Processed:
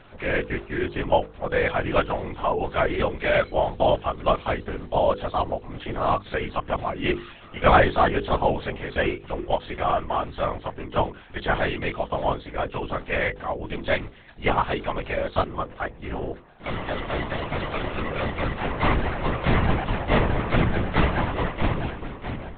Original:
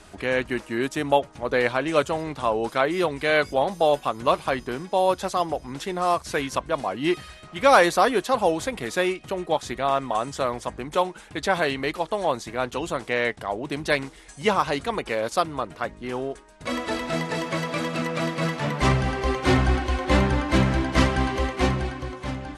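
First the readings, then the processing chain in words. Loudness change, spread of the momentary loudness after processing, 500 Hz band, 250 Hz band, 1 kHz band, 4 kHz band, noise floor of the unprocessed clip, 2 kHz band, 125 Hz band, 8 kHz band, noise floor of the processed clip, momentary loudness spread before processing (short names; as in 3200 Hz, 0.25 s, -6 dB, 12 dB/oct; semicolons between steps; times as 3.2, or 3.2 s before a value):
-1.0 dB, 9 LU, -1.0 dB, -2.5 dB, -0.5 dB, -3.0 dB, -47 dBFS, -1.0 dB, +0.5 dB, under -40 dB, -45 dBFS, 9 LU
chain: nonlinear frequency compression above 2600 Hz 1.5:1; LPC vocoder at 8 kHz whisper; notches 50/100/150/200/250/300/350/400/450/500 Hz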